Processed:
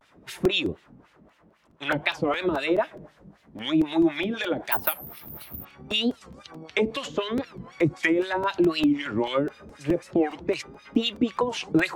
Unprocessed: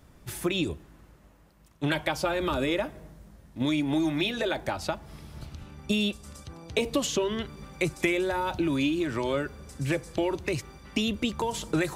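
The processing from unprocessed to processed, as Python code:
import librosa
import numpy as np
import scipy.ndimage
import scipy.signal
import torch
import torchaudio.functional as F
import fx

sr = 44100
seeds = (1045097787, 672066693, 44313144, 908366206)

y = fx.filter_lfo_bandpass(x, sr, shape='sine', hz=3.9, low_hz=230.0, high_hz=3200.0, q=1.2)
y = fx.vibrato(y, sr, rate_hz=0.85, depth_cents=100.0)
y = fx.resample_bad(y, sr, factor=3, down='filtered', up='zero_stuff', at=(4.72, 5.65))
y = fx.buffer_crackle(y, sr, first_s=0.45, period_s=0.21, block=128, kind='repeat')
y = fx.record_warp(y, sr, rpm=45.0, depth_cents=250.0)
y = y * librosa.db_to_amplitude(8.5)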